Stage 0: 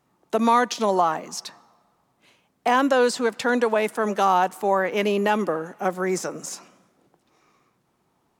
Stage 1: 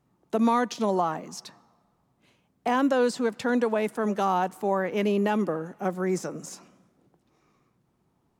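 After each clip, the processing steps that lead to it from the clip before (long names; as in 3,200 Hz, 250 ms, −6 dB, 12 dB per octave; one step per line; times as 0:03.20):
low-shelf EQ 310 Hz +12 dB
level −7.5 dB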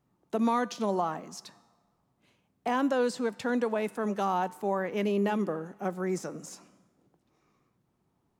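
tuned comb filter 100 Hz, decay 0.93 s, harmonics all, mix 40%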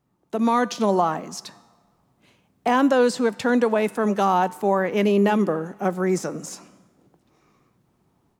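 automatic gain control gain up to 7 dB
level +2 dB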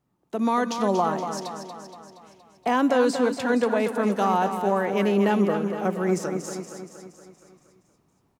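repeating echo 235 ms, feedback 57%, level −8 dB
level −3 dB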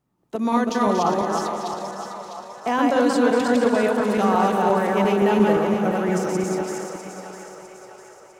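feedback delay that plays each chunk backwards 174 ms, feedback 43%, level −1 dB
echo with a time of its own for lows and highs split 480 Hz, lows 102 ms, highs 653 ms, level −9.5 dB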